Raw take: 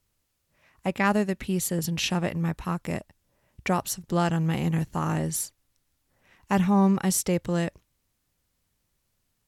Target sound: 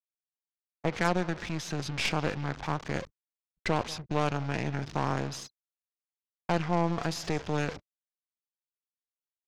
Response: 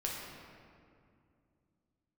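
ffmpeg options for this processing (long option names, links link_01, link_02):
-filter_complex "[0:a]aeval=exprs='val(0)+0.5*0.0335*sgn(val(0))':channel_layout=same,lowpass=frequency=7200:width=0.5412,lowpass=frequency=7200:width=1.3066,aecho=1:1:180|360|540|720:0.1|0.047|0.0221|0.0104,agate=range=-22dB:threshold=-32dB:ratio=16:detection=peak,aeval=exprs='val(0)*gte(abs(val(0)),0.00355)':channel_layout=same,anlmdn=0.251,acrossover=split=400|3000[link_01][link_02][link_03];[link_01]acompressor=threshold=-30dB:ratio=3[link_04];[link_04][link_02][link_03]amix=inputs=3:normalize=0,highpass=frequency=130:poles=1,asetrate=38170,aresample=44100,atempo=1.15535,acrossover=split=4600[link_05][link_06];[link_06]acompressor=threshold=-40dB:ratio=4:attack=1:release=60[link_07];[link_05][link_07]amix=inputs=2:normalize=0,aeval=exprs='0.398*(cos(1*acos(clip(val(0)/0.398,-1,1)))-cos(1*PI/2))+0.0501*(cos(8*acos(clip(val(0)/0.398,-1,1)))-cos(8*PI/2))':channel_layout=same,volume=-4dB"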